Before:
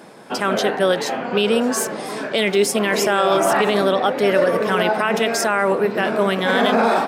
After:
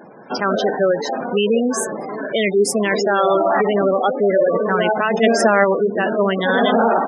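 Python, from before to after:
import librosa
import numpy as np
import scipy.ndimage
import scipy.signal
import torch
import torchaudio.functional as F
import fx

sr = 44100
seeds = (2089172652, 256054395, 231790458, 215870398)

y = fx.spec_gate(x, sr, threshold_db=-15, keep='strong')
y = fx.small_body(y, sr, hz=(250.0, 520.0, 1800.0), ring_ms=20, db=10, at=(5.22, 5.63), fade=0.02)
y = F.gain(torch.from_numpy(y), 1.5).numpy()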